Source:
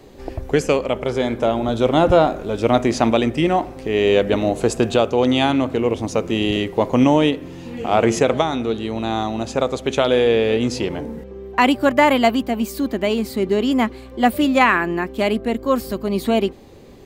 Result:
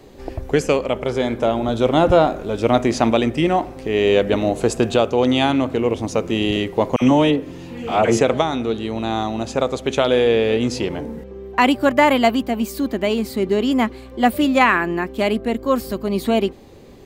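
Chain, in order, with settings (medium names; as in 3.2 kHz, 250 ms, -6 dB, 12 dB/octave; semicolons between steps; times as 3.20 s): 6.96–8.21 s: phase dispersion lows, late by 55 ms, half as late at 1.2 kHz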